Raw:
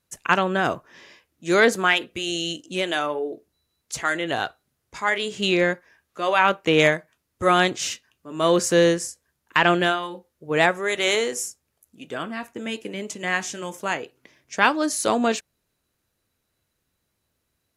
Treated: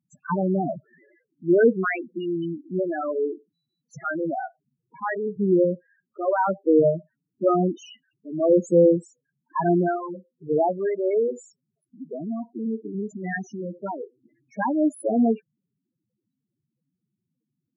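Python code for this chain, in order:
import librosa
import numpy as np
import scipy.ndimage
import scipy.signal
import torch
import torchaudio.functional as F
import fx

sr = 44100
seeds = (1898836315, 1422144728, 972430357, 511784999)

y = scipy.signal.sosfilt(scipy.signal.butter(4, 140.0, 'highpass', fs=sr, output='sos'), x)
y = fx.tilt_eq(y, sr, slope=-2.5)
y = fx.spec_topn(y, sr, count=4)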